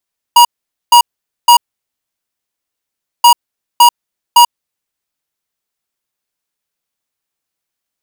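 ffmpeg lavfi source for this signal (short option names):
-f lavfi -i "aevalsrc='0.631*(2*lt(mod(956*t,1),0.5)-1)*clip(min(mod(mod(t,2.88),0.56),0.09-mod(mod(t,2.88),0.56))/0.005,0,1)*lt(mod(t,2.88),1.68)':d=5.76:s=44100"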